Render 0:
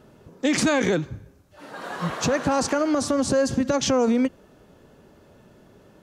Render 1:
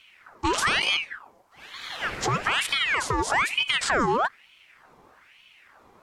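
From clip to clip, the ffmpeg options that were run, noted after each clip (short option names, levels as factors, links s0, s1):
-af "aeval=exprs='val(0)*sin(2*PI*1700*n/s+1700*0.65/1.1*sin(2*PI*1.1*n/s))':c=same"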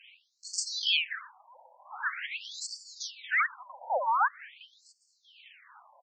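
-af "aecho=1:1:516|1032|1548|2064:0.075|0.0412|0.0227|0.0125,afreqshift=74,afftfilt=real='re*between(b*sr/1024,690*pow(6200/690,0.5+0.5*sin(2*PI*0.45*pts/sr))/1.41,690*pow(6200/690,0.5+0.5*sin(2*PI*0.45*pts/sr))*1.41)':imag='im*between(b*sr/1024,690*pow(6200/690,0.5+0.5*sin(2*PI*0.45*pts/sr))/1.41,690*pow(6200/690,0.5+0.5*sin(2*PI*0.45*pts/sr))*1.41)':win_size=1024:overlap=0.75"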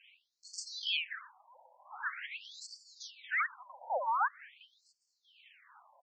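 -af "lowpass=f=3400:p=1,volume=0.596"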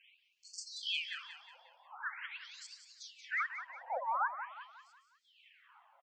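-filter_complex "[0:a]bandreject=f=600:w=12,asplit=2[s0][s1];[s1]asplit=5[s2][s3][s4][s5][s6];[s2]adelay=181,afreqshift=34,volume=0.316[s7];[s3]adelay=362,afreqshift=68,volume=0.14[s8];[s4]adelay=543,afreqshift=102,volume=0.061[s9];[s5]adelay=724,afreqshift=136,volume=0.0269[s10];[s6]adelay=905,afreqshift=170,volume=0.0119[s11];[s7][s8][s9][s10][s11]amix=inputs=5:normalize=0[s12];[s0][s12]amix=inputs=2:normalize=0,volume=0.708"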